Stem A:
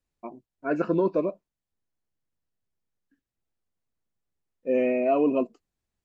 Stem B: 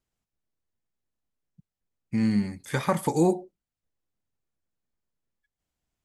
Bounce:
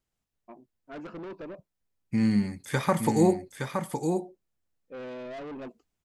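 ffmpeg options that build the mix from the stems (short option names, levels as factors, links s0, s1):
-filter_complex "[0:a]asoftclip=type=tanh:threshold=0.0355,adelay=250,volume=0.398[s0];[1:a]volume=1,asplit=2[s1][s2];[s2]volume=0.501,aecho=0:1:867:1[s3];[s0][s1][s3]amix=inputs=3:normalize=0"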